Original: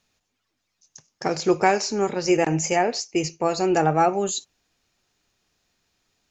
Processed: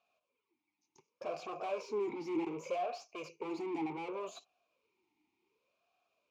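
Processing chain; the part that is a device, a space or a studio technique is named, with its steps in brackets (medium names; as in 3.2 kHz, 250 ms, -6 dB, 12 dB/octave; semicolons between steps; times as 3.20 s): 2.77–3.42 s: peaking EQ 250 Hz -6 dB 1.9 oct; talk box (valve stage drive 32 dB, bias 0.25; talking filter a-u 0.67 Hz); trim +6.5 dB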